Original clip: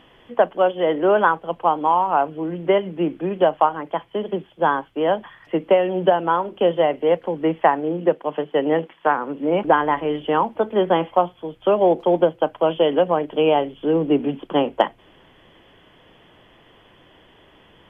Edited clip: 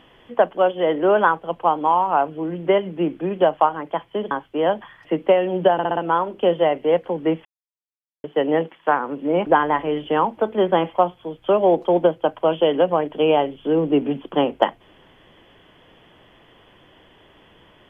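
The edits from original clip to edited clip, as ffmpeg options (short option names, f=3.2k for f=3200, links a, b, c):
-filter_complex "[0:a]asplit=8[a][b][c][d][e][f][g][h];[a]atrim=end=4.312[i];[b]atrim=start=4.728:end=6.212[j];[c]atrim=start=6.148:end=6.212[k];[d]atrim=start=6.148:end=6.212[l];[e]atrim=start=6.148:end=6.212[m];[f]atrim=start=6.148:end=7.63,asetpts=PTS-STARTPTS,afade=t=out:st=1.478:d=0.004:c=hsin[n];[g]atrim=start=7.63:end=8.42,asetpts=PTS-STARTPTS,volume=0[o];[h]atrim=start=8.42,asetpts=PTS-STARTPTS,afade=t=in:d=0.004:c=hsin[p];[i][j]acrossfade=d=0.004:c1=hsin:c2=hsin[q];[q][k]acrossfade=d=0.004:c1=hsin:c2=hsin[r];[r][l]acrossfade=d=0.004:c1=hsin:c2=hsin[s];[s][m]acrossfade=d=0.004:c1=hsin:c2=hsin[t];[n][o][p]concat=n=3:v=0:a=1[u];[t][u]acrossfade=d=0.004:c1=hsin:c2=hsin"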